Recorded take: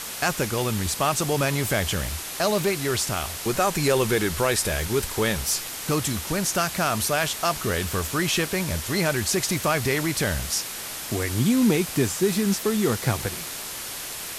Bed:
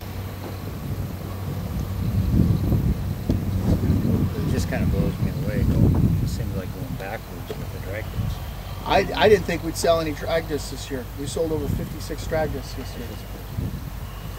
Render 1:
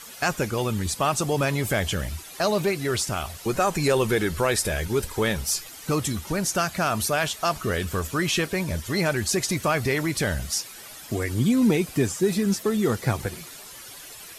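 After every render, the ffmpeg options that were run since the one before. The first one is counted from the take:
-af "afftdn=nr=12:nf=-34"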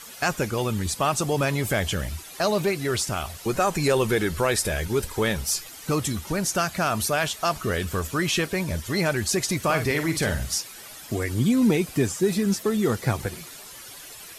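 -filter_complex "[0:a]asettb=1/sr,asplit=3[a][b][c];[a]atrim=end=9.644[d];[b]atrim=start=9.64:end=10.57,asetpts=PTS-STARTPTS,afade=t=in:d=0.004:c=qsin,afade=t=out:st=0.926:d=0.004:c=qsin,asplit=2[e][f];[f]adelay=49,volume=-8dB[g];[e][g]amix=inputs=2:normalize=0,atrim=end_sample=41013[h];[c]atrim=start=10.566[i];[d][h]acrossfade=d=0.004:c1=hsin:c2=qsin[j];[j][i]acrossfade=d=0.004:c1=qsin:c2=hsin"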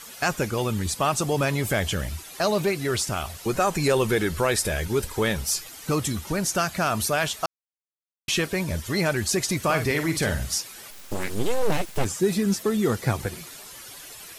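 -filter_complex "[0:a]asplit=3[a][b][c];[a]afade=t=out:st=10.9:d=0.02[d];[b]aeval=exprs='abs(val(0))':c=same,afade=t=in:st=10.9:d=0.02,afade=t=out:st=12.04:d=0.02[e];[c]afade=t=in:st=12.04:d=0.02[f];[d][e][f]amix=inputs=3:normalize=0,asplit=3[g][h][i];[g]atrim=end=7.46,asetpts=PTS-STARTPTS,afade=t=out:st=7.456:d=0.004:c=hsin[j];[h]atrim=start=7.46:end=8.28,asetpts=PTS-STARTPTS,volume=0[k];[i]atrim=start=8.28,asetpts=PTS-STARTPTS,afade=t=in:d=0.004:c=hsin[l];[j][k][l]concat=n=3:v=0:a=1"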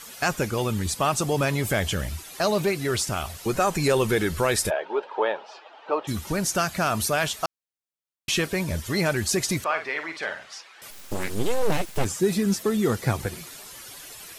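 -filter_complex "[0:a]asplit=3[a][b][c];[a]afade=t=out:st=4.69:d=0.02[d];[b]highpass=f=390:w=0.5412,highpass=f=390:w=1.3066,equalizer=f=620:t=q:w=4:g=7,equalizer=f=880:t=q:w=4:g=10,equalizer=f=2.1k:t=q:w=4:g=-10,lowpass=f=2.8k:w=0.5412,lowpass=f=2.8k:w=1.3066,afade=t=in:st=4.69:d=0.02,afade=t=out:st=6.07:d=0.02[e];[c]afade=t=in:st=6.07:d=0.02[f];[d][e][f]amix=inputs=3:normalize=0,asettb=1/sr,asplit=3[g][h][i];[g]atrim=end=9.644[j];[h]atrim=start=9.64:end=10.82,asetpts=PTS-STARTPTS,afade=t=in:d=0.004:c=qsin,afade=t=out:st=1.176:d=0.004:c=qsin,highpass=710,lowpass=2.7k[k];[i]atrim=start=10.816[l];[j][k]acrossfade=d=0.004:c1=hsin:c2=qsin[m];[m][l]acrossfade=d=0.004:c1=qsin:c2=hsin"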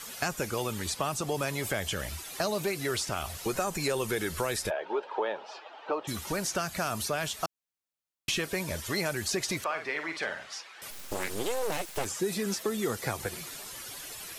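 -filter_complex "[0:a]acrossover=split=360|5400[a][b][c];[a]acompressor=threshold=-38dB:ratio=4[d];[b]acompressor=threshold=-30dB:ratio=4[e];[c]acompressor=threshold=-38dB:ratio=4[f];[d][e][f]amix=inputs=3:normalize=0"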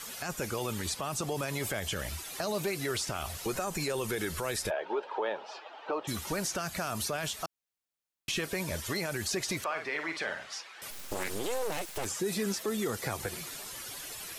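-af "alimiter=limit=-23dB:level=0:latency=1:release=26"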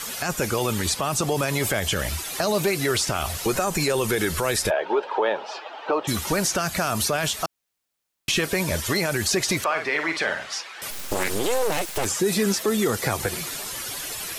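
-af "volume=10dB"

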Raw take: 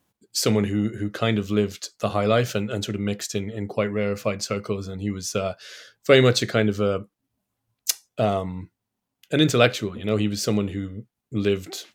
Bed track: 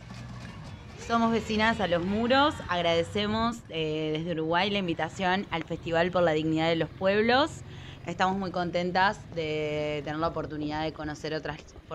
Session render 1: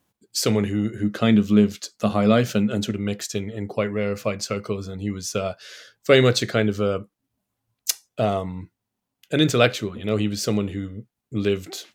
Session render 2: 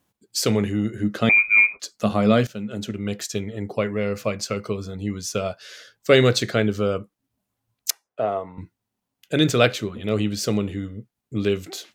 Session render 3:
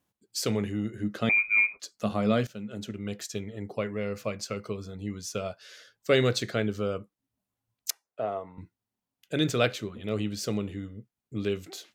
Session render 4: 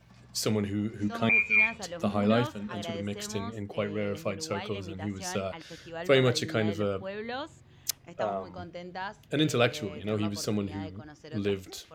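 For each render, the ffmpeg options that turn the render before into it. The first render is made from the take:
-filter_complex "[0:a]asettb=1/sr,asplit=3[a][b][c];[a]atrim=end=1.034[d];[b]atrim=start=1.03:end=2.91,asetpts=PTS-STARTPTS,afade=t=in:d=0.004:c=qsin,afade=t=out:st=1.876:d=0.004:c=qsin,equalizer=f=220:w=2.7:g=10[e];[c]atrim=start=2.906[f];[d][e]acrossfade=d=0.004:c1=hsin:c2=qsin[g];[g][f]acrossfade=d=0.004:c1=qsin:c2=hsin"
-filter_complex "[0:a]asettb=1/sr,asplit=3[a][b][c];[a]atrim=end=1.294[d];[b]atrim=start=1.29:end=1.8,asetpts=PTS-STARTPTS,afade=t=in:d=0.004:c=qsin,afade=t=out:st=0.506:d=0.004:c=qsin,lowpass=f=2.2k:t=q:w=0.5098,lowpass=f=2.2k:t=q:w=0.6013,lowpass=f=2.2k:t=q:w=0.9,lowpass=f=2.2k:t=q:w=2.563,afreqshift=-2600[e];[c]atrim=start=1.796[f];[d][e]acrossfade=d=0.004:c1=hsin:c2=qsin[g];[g][f]acrossfade=d=0.004:c1=qsin:c2=hsin,asettb=1/sr,asplit=3[h][i][j];[h]atrim=end=7.904[k];[i]atrim=start=7.9:end=8.58,asetpts=PTS-STARTPTS,afade=t=in:d=0.004:c=qsin,afade=t=out:st=0.676:d=0.004:c=qsin,acrossover=split=340 2100:gain=0.2 1 0.112[l][m][n];[l][m][n]amix=inputs=3:normalize=0[o];[j]atrim=start=8.576[p];[k][o]acrossfade=d=0.004:c1=hsin:c2=qsin[q];[q][p]acrossfade=d=0.004:c1=qsin:c2=hsin,asplit=2[r][s];[r]atrim=end=2.47,asetpts=PTS-STARTPTS,afade=t=out:st=2.466:d=0.004:c=hsin:silence=0.158489[t];[s]atrim=start=2.47,asetpts=PTS-STARTPTS,afade=t=in:d=0.74:silence=0.158489[u];[t][u]concat=n=2:v=0:a=1"
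-af "volume=-7.5dB"
-filter_complex "[1:a]volume=-13dB[a];[0:a][a]amix=inputs=2:normalize=0"

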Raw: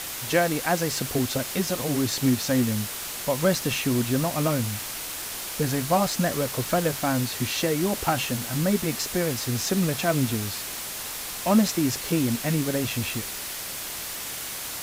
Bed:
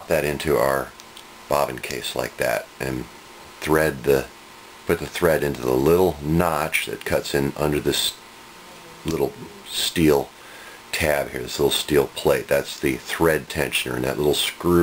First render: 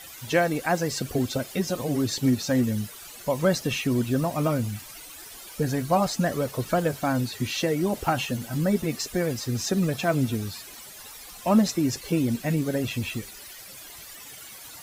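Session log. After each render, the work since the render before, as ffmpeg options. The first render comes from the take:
-af "afftdn=nr=14:nf=-34"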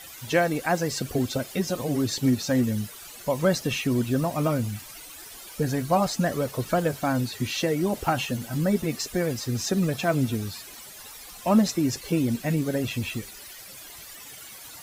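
-af anull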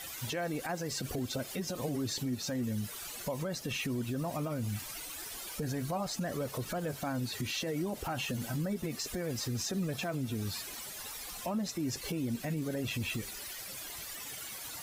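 -af "acompressor=threshold=-29dB:ratio=6,alimiter=level_in=2.5dB:limit=-24dB:level=0:latency=1:release=33,volume=-2.5dB"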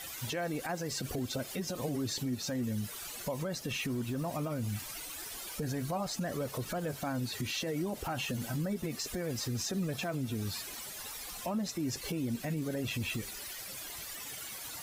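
-filter_complex "[0:a]asettb=1/sr,asplit=3[a][b][c];[a]atrim=end=3.684[d];[b]atrim=start=3.68:end=4.25,asetpts=PTS-STARTPTS,afade=t=in:d=0.004:c=qsin,afade=t=out:st=0.566:d=0.004:c=qsin,asoftclip=type=hard:threshold=-28.5dB[e];[c]atrim=start=4.246[f];[d][e]acrossfade=d=0.004:c1=hsin:c2=qsin[g];[g][f]acrossfade=d=0.004:c1=qsin:c2=hsin"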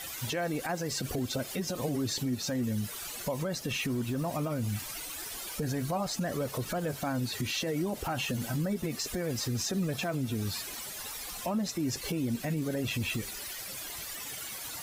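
-af "volume=3dB"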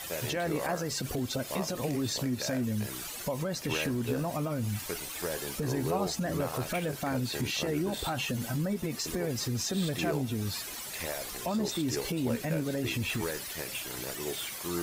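-filter_complex "[1:a]volume=-17.5dB[a];[0:a][a]amix=inputs=2:normalize=0"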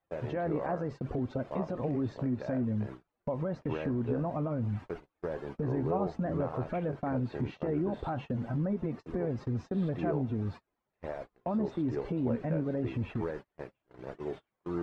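-af "lowpass=1.1k,agate=range=-35dB:threshold=-40dB:ratio=16:detection=peak"

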